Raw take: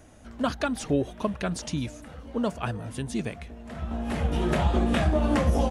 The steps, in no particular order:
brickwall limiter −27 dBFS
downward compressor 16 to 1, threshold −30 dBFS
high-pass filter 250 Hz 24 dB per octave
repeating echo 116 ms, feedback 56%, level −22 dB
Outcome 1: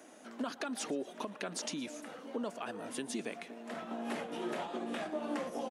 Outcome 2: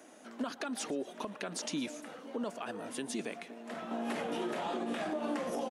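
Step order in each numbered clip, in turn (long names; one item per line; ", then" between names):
downward compressor, then high-pass filter, then brickwall limiter, then repeating echo
high-pass filter, then downward compressor, then brickwall limiter, then repeating echo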